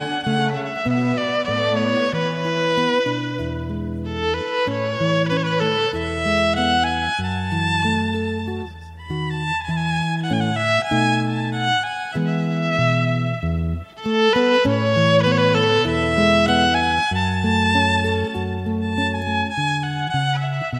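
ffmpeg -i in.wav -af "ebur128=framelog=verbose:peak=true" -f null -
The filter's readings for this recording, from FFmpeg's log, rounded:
Integrated loudness:
  I:         -20.0 LUFS
  Threshold: -30.1 LUFS
Loudness range:
  LRA:         5.0 LU
  Threshold: -39.9 LUFS
  LRA low:   -22.0 LUFS
  LRA high:  -17.0 LUFS
True peak:
  Peak:       -5.1 dBFS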